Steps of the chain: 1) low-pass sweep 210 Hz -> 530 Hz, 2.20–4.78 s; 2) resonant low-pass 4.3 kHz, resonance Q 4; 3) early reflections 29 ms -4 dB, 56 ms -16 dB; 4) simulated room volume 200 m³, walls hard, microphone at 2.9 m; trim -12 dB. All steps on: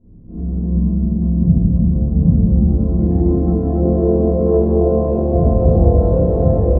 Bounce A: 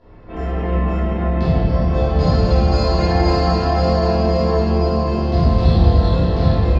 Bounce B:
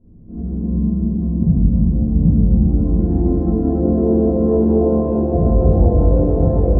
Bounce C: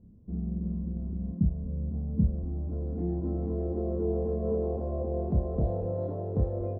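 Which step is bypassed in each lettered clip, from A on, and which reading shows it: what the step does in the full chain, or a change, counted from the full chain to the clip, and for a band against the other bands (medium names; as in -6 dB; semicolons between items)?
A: 1, 1 kHz band +10.5 dB; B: 3, echo-to-direct 17.5 dB to 16.0 dB; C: 4, echo-to-direct 17.5 dB to -3.5 dB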